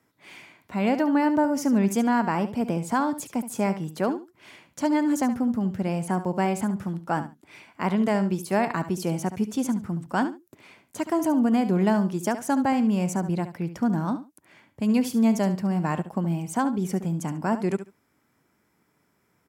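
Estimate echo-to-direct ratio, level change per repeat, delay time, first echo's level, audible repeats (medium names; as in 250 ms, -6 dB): -12.0 dB, -15.0 dB, 71 ms, -12.0 dB, 2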